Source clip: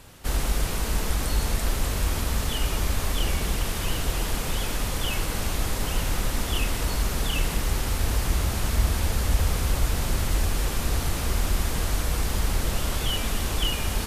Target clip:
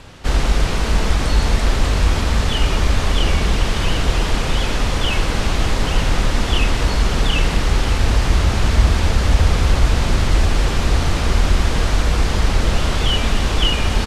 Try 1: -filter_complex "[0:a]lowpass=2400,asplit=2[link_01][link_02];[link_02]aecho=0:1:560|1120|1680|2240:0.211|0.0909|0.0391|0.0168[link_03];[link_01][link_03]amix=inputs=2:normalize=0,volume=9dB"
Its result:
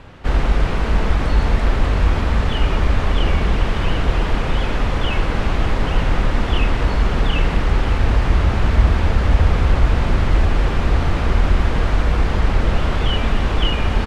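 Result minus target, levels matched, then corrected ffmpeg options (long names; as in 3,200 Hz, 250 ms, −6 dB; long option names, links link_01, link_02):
4,000 Hz band −5.5 dB
-filter_complex "[0:a]lowpass=5300,asplit=2[link_01][link_02];[link_02]aecho=0:1:560|1120|1680|2240:0.211|0.0909|0.0391|0.0168[link_03];[link_01][link_03]amix=inputs=2:normalize=0,volume=9dB"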